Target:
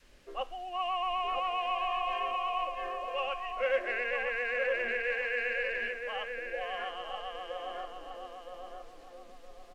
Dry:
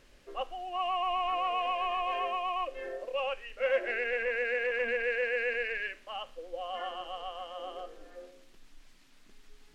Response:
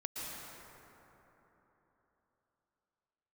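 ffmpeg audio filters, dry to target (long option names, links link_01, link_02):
-filter_complex "[0:a]adynamicequalizer=threshold=0.00501:dfrequency=360:dqfactor=0.78:tfrequency=360:tqfactor=0.78:attack=5:release=100:ratio=0.375:range=3.5:mode=cutabove:tftype=bell,asplit=2[link_01][link_02];[link_02]adelay=966,lowpass=frequency=1500:poles=1,volume=-3.5dB,asplit=2[link_03][link_04];[link_04]adelay=966,lowpass=frequency=1500:poles=1,volume=0.38,asplit=2[link_05][link_06];[link_06]adelay=966,lowpass=frequency=1500:poles=1,volume=0.38,asplit=2[link_07][link_08];[link_08]adelay=966,lowpass=frequency=1500:poles=1,volume=0.38,asplit=2[link_09][link_10];[link_10]adelay=966,lowpass=frequency=1500:poles=1,volume=0.38[link_11];[link_01][link_03][link_05][link_07][link_09][link_11]amix=inputs=6:normalize=0"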